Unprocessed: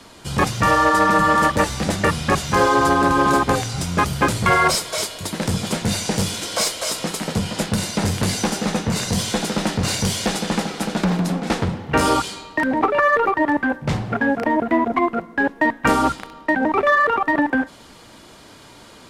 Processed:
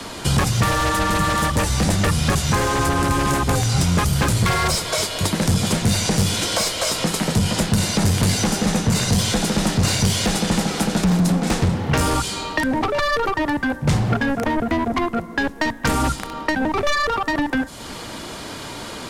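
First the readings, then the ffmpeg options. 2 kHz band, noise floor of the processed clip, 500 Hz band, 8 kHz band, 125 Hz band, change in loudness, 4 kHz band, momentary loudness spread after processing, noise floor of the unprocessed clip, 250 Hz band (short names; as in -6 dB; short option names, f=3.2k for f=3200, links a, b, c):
-3.0 dB, -34 dBFS, -2.5 dB, +3.0 dB, +5.5 dB, -0.5 dB, +3.0 dB, 5 LU, -45 dBFS, +0.5 dB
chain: -filter_complex "[0:a]aeval=exprs='0.631*sin(PI/2*2.51*val(0)/0.631)':c=same,acrossover=split=140|5700[a][b][c];[a]acompressor=threshold=-18dB:ratio=4[d];[b]acompressor=threshold=-22dB:ratio=4[e];[c]acompressor=threshold=-29dB:ratio=4[f];[d][e][f]amix=inputs=3:normalize=0"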